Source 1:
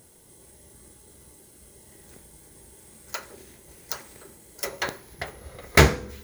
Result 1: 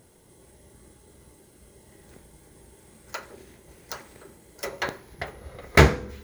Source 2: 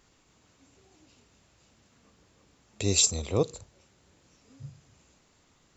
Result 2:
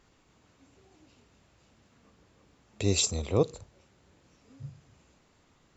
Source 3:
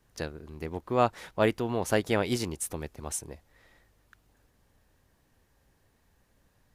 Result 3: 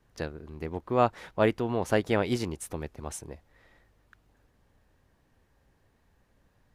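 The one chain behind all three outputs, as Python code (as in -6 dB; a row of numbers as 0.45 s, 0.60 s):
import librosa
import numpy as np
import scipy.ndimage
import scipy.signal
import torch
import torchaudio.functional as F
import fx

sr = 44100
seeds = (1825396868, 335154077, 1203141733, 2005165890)

y = fx.high_shelf(x, sr, hz=4700.0, db=-9.5)
y = F.gain(torch.from_numpy(y), 1.0).numpy()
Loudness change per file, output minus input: +0.5 LU, -2.5 LU, +0.5 LU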